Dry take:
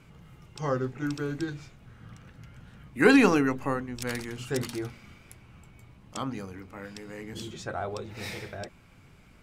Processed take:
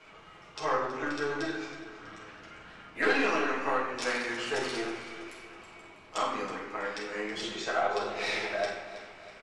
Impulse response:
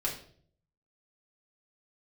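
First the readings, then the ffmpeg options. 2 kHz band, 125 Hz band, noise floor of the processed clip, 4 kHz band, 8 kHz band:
+0.5 dB, −15.0 dB, −53 dBFS, +3.0 dB, −1.5 dB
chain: -filter_complex "[0:a]aeval=exprs='0.562*(cos(1*acos(clip(val(0)/0.562,-1,1)))-cos(1*PI/2))+0.0501*(cos(8*acos(clip(val(0)/0.562,-1,1)))-cos(8*PI/2))':channel_layout=same,acompressor=threshold=-32dB:ratio=3,acrossover=split=400 6600:gain=0.0794 1 0.1[link_01][link_02][link_03];[link_01][link_02][link_03]amix=inputs=3:normalize=0,bandreject=frequency=60:width_type=h:width=6,bandreject=frequency=120:width_type=h:width=6,aecho=1:1:324|648|972|1296|1620:0.2|0.0998|0.0499|0.0249|0.0125[link_04];[1:a]atrim=start_sample=2205,asetrate=22932,aresample=44100[link_05];[link_04][link_05]afir=irnorm=-1:irlink=0"

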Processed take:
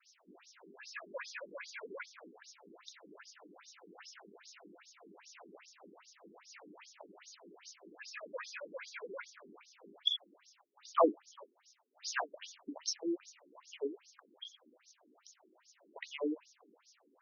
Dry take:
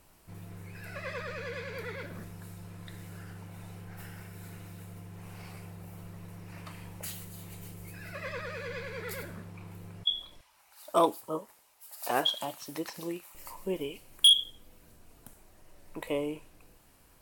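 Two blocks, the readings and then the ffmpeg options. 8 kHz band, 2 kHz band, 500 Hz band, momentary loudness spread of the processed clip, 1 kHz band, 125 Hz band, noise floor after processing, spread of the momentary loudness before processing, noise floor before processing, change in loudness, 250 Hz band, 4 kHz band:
−6.5 dB, −5.0 dB, −4.0 dB, 22 LU, −6.0 dB, below −30 dB, −73 dBFS, 19 LU, −62 dBFS, −8.5 dB, −4.0 dB, −14.0 dB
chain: -af "adynamicequalizer=threshold=0.002:dfrequency=4600:dqfactor=2:tfrequency=4600:tqfactor=2:attack=5:release=100:ratio=0.375:range=3:mode=cutabove:tftype=bell,aexciter=amount=6.1:drive=5.6:freq=5300,afftfilt=real='re*between(b*sr/1024,280*pow(4900/280,0.5+0.5*sin(2*PI*2.5*pts/sr))/1.41,280*pow(4900/280,0.5+0.5*sin(2*PI*2.5*pts/sr))*1.41)':imag='im*between(b*sr/1024,280*pow(4900/280,0.5+0.5*sin(2*PI*2.5*pts/sr))/1.41,280*pow(4900/280,0.5+0.5*sin(2*PI*2.5*pts/sr))*1.41)':win_size=1024:overlap=0.75,volume=2dB"

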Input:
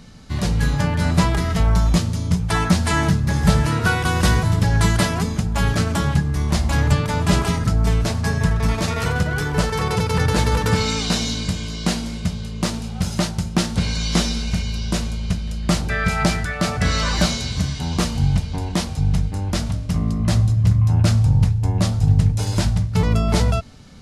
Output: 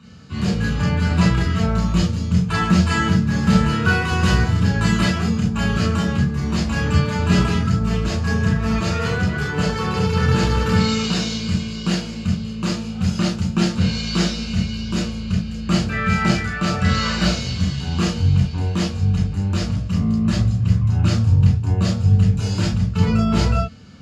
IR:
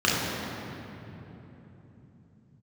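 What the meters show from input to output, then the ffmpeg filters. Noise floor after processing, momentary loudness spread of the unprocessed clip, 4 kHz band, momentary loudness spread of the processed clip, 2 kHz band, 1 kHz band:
−28 dBFS, 7 LU, −0.5 dB, 6 LU, +0.5 dB, −1.0 dB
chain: -filter_complex "[1:a]atrim=start_sample=2205,afade=type=out:start_time=0.13:duration=0.01,atrim=end_sample=6174[link_01];[0:a][link_01]afir=irnorm=-1:irlink=0,volume=-14.5dB"

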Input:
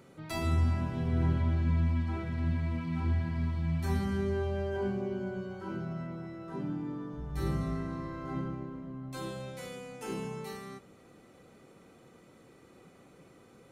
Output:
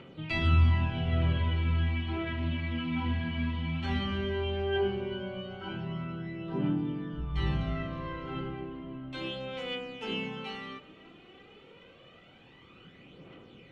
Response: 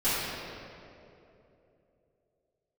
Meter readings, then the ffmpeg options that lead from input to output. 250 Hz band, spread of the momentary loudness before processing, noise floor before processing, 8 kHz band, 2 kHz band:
+1.0 dB, 13 LU, −58 dBFS, below −10 dB, +7.0 dB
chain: -filter_complex "[0:a]aphaser=in_gain=1:out_gain=1:delay=4.4:decay=0.52:speed=0.15:type=triangular,lowpass=frequency=3000:width_type=q:width=5.9,asplit=2[link_01][link_02];[1:a]atrim=start_sample=2205,asetrate=29106,aresample=44100[link_03];[link_02][link_03]afir=irnorm=-1:irlink=0,volume=-33dB[link_04];[link_01][link_04]amix=inputs=2:normalize=0"

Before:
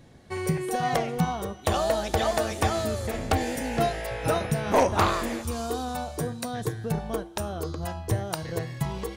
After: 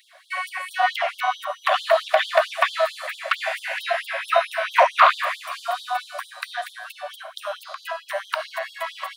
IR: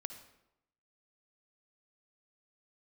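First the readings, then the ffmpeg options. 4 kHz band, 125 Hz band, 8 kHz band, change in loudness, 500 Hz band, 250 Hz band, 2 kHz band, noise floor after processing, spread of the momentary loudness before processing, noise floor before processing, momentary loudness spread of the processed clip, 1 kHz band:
+6.5 dB, below −40 dB, −6.0 dB, +4.5 dB, +2.5 dB, below −40 dB, +10.5 dB, −50 dBFS, 8 LU, −45 dBFS, 14 LU, +6.5 dB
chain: -filter_complex "[0:a]acrossover=split=3900[link_01][link_02];[link_02]acompressor=threshold=-53dB:ratio=4:attack=1:release=60[link_03];[link_01][link_03]amix=inputs=2:normalize=0,aexciter=amount=2.5:drive=4:freq=8300,asuperstop=centerf=850:order=4:qfactor=4.6,asplit=2[link_04][link_05];[1:a]atrim=start_sample=2205,lowpass=4300[link_06];[link_05][link_06]afir=irnorm=-1:irlink=0,volume=9dB[link_07];[link_04][link_07]amix=inputs=2:normalize=0,afftfilt=real='re*gte(b*sr/1024,530*pow(3200/530,0.5+0.5*sin(2*PI*4.5*pts/sr)))':imag='im*gte(b*sr/1024,530*pow(3200/530,0.5+0.5*sin(2*PI*4.5*pts/sr)))':win_size=1024:overlap=0.75,volume=3.5dB"

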